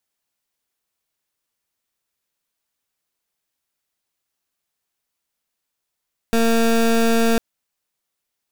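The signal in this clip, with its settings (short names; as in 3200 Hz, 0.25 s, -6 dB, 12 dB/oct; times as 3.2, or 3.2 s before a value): pulse 229 Hz, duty 22% -16 dBFS 1.05 s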